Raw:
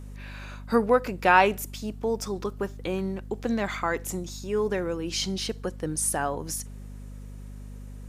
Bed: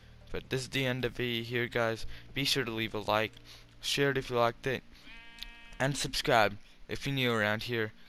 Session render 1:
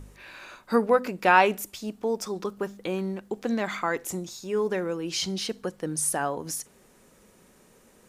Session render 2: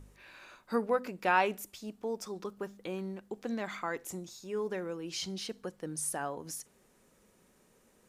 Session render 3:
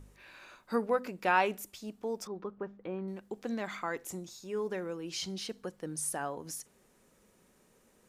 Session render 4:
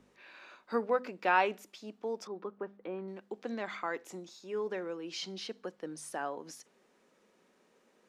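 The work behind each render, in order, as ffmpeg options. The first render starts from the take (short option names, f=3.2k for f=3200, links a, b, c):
-af "bandreject=f=50:t=h:w=4,bandreject=f=100:t=h:w=4,bandreject=f=150:t=h:w=4,bandreject=f=200:t=h:w=4,bandreject=f=250:t=h:w=4"
-af "volume=-8.5dB"
-filter_complex "[0:a]asettb=1/sr,asplit=3[a][b][c];[a]atrim=end=2.274[d];[b]atrim=start=2.27:end=3.08,asetpts=PTS-STARTPTS,afade=t=in:d=0.004:c=qsin,afade=t=out:st=0.806:d=0.004:c=qsin,lowpass=1.7k[e];[c]atrim=start=3.076[f];[d][e]acrossfade=d=0.004:c1=hsin:c2=qsin[g];[g][f]acrossfade=d=0.004:c1=qsin:c2=hsin"
-filter_complex "[0:a]acrossover=split=200 5800:gain=0.0631 1 0.158[a][b][c];[a][b][c]amix=inputs=3:normalize=0"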